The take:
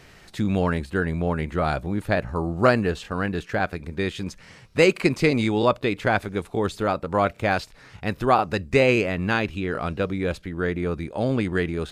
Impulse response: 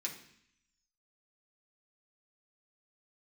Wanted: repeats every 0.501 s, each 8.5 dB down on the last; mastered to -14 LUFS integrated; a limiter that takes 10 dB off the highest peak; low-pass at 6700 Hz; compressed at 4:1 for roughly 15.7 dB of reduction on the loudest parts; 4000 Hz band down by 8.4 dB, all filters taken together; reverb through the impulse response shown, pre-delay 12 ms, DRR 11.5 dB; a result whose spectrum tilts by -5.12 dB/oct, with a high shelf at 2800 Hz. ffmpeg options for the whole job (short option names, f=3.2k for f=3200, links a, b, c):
-filter_complex "[0:a]lowpass=6.7k,highshelf=f=2.8k:g=-9,equalizer=f=4k:t=o:g=-3.5,acompressor=threshold=-33dB:ratio=4,alimiter=level_in=5.5dB:limit=-24dB:level=0:latency=1,volume=-5.5dB,aecho=1:1:501|1002|1503|2004:0.376|0.143|0.0543|0.0206,asplit=2[a][b];[1:a]atrim=start_sample=2205,adelay=12[c];[b][c]afir=irnorm=-1:irlink=0,volume=-11.5dB[d];[a][d]amix=inputs=2:normalize=0,volume=25.5dB"